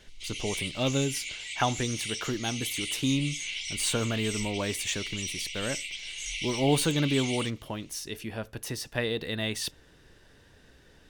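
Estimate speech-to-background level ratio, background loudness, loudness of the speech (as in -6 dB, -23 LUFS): 3.0 dB, -34.0 LUFS, -31.0 LUFS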